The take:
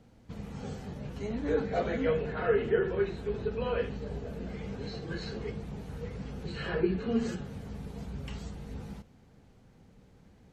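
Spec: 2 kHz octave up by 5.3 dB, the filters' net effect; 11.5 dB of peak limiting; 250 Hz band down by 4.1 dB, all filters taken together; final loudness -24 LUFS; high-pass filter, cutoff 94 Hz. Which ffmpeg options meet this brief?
-af "highpass=94,equalizer=f=250:t=o:g=-5.5,equalizer=f=2000:t=o:g=7,volume=5.01,alimiter=limit=0.251:level=0:latency=1"

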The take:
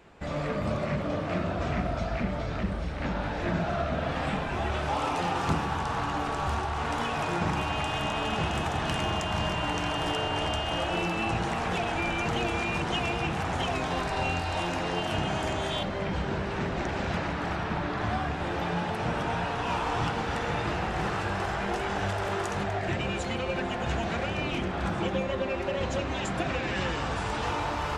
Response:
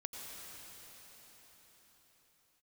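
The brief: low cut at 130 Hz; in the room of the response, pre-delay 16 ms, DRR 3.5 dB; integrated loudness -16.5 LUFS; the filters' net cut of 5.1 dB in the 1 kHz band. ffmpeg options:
-filter_complex "[0:a]highpass=130,equalizer=f=1000:t=o:g=-7,asplit=2[s0][s1];[1:a]atrim=start_sample=2205,adelay=16[s2];[s1][s2]afir=irnorm=-1:irlink=0,volume=0.75[s3];[s0][s3]amix=inputs=2:normalize=0,volume=5.01"

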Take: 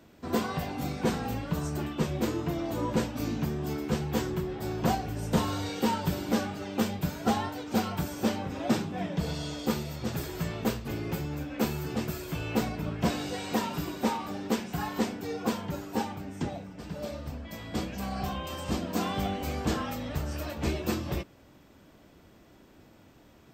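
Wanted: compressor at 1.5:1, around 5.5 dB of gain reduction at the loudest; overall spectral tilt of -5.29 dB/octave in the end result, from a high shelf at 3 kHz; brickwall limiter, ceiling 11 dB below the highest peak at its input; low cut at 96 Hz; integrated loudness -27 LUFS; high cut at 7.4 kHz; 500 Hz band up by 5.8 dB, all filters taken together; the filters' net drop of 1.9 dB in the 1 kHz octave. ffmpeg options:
-af "highpass=96,lowpass=7400,equalizer=f=500:t=o:g=8.5,equalizer=f=1000:t=o:g=-7,highshelf=f=3000:g=6,acompressor=threshold=0.02:ratio=1.5,volume=2.99,alimiter=limit=0.141:level=0:latency=1"

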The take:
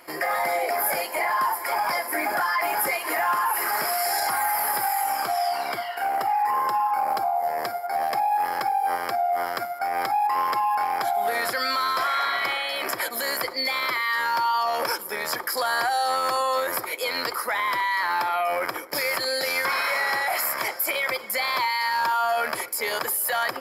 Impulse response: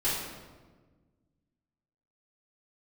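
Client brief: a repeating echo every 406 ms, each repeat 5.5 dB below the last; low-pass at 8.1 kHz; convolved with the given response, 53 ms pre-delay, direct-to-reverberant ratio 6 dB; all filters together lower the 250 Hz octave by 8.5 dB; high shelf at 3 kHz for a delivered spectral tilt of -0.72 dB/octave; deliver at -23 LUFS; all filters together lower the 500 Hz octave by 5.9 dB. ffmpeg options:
-filter_complex "[0:a]lowpass=8100,equalizer=f=250:t=o:g=-8.5,equalizer=f=500:t=o:g=-7.5,highshelf=f=3000:g=4.5,aecho=1:1:406|812|1218|1624|2030|2436|2842:0.531|0.281|0.149|0.079|0.0419|0.0222|0.0118,asplit=2[s0][s1];[1:a]atrim=start_sample=2205,adelay=53[s2];[s1][s2]afir=irnorm=-1:irlink=0,volume=0.178[s3];[s0][s3]amix=inputs=2:normalize=0,volume=0.944"

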